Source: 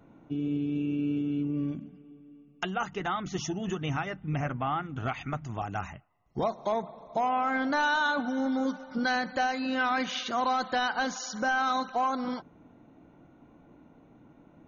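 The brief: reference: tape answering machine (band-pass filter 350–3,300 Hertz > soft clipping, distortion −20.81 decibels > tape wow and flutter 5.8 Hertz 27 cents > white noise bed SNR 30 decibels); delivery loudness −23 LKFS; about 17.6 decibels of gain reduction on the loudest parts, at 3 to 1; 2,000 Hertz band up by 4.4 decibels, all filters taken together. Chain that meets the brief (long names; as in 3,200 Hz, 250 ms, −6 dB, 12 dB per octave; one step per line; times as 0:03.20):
parametric band 2,000 Hz +7 dB
downward compressor 3 to 1, threshold −46 dBFS
band-pass filter 350–3,300 Hz
soft clipping −34 dBFS
tape wow and flutter 5.8 Hz 27 cents
white noise bed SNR 30 dB
level +23.5 dB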